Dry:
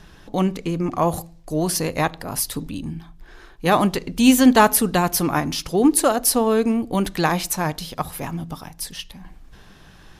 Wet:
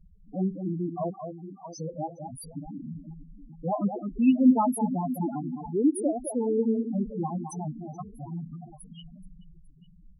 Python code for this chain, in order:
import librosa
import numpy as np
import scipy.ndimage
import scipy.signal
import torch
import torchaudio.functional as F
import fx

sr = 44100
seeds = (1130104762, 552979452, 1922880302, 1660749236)

y = fx.brickwall_bandpass(x, sr, low_hz=730.0, high_hz=8000.0, at=(1.1, 1.8))
y = fx.echo_alternate(y, sr, ms=212, hz=2300.0, feedback_pct=74, wet_db=-7.0)
y = fx.spec_topn(y, sr, count=4)
y = F.gain(torch.from_numpy(y), -6.5).numpy()